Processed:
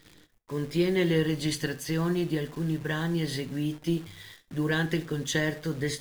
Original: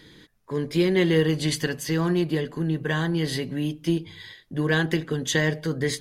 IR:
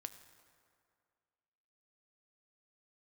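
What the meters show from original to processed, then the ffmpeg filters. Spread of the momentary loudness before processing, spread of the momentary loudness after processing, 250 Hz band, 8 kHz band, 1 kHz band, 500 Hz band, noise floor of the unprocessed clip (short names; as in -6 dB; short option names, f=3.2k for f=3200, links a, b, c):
8 LU, 7 LU, -4.0 dB, -4.5 dB, -4.5 dB, -5.0 dB, -56 dBFS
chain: -filter_complex "[0:a]lowshelf=f=67:g=7.5,acrusher=bits=8:dc=4:mix=0:aa=0.000001[a];[1:a]atrim=start_sample=2205,atrim=end_sample=3969[b];[a][b]afir=irnorm=-1:irlink=0"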